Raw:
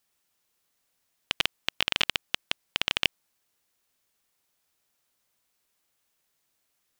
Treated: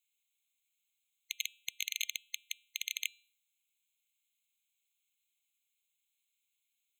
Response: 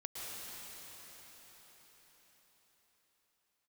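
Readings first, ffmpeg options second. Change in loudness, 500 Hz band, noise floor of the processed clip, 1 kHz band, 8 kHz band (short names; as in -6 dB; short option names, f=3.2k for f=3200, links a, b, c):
-10.0 dB, under -40 dB, -84 dBFS, under -40 dB, +2.5 dB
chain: -af "bandreject=f=237.1:t=h:w=4,bandreject=f=474.2:t=h:w=4,bandreject=f=711.3:t=h:w=4,bandreject=f=948.4:t=h:w=4,bandreject=f=1.1855k:t=h:w=4,bandreject=f=1.4226k:t=h:w=4,bandreject=f=1.6597k:t=h:w=4,bandreject=f=1.8968k:t=h:w=4,bandreject=f=2.1339k:t=h:w=4,aeval=exprs='abs(val(0))':c=same,afftfilt=real='re*eq(mod(floor(b*sr/1024/2100),2),1)':imag='im*eq(mod(floor(b*sr/1024/2100),2),1)':win_size=1024:overlap=0.75"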